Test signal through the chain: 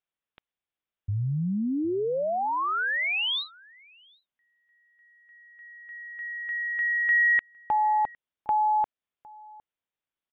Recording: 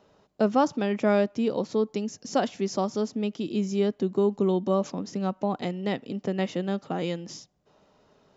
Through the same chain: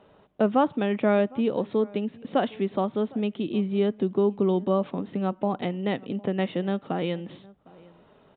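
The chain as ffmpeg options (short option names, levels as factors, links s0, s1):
-filter_complex "[0:a]asplit=2[s0][s1];[s1]acompressor=threshold=0.0178:ratio=6,volume=0.75[s2];[s0][s2]amix=inputs=2:normalize=0,aresample=8000,aresample=44100,asplit=2[s3][s4];[s4]adelay=758,volume=0.0708,highshelf=f=4000:g=-17.1[s5];[s3][s5]amix=inputs=2:normalize=0" -ar 48000 -c:a libmp3lame -b:a 80k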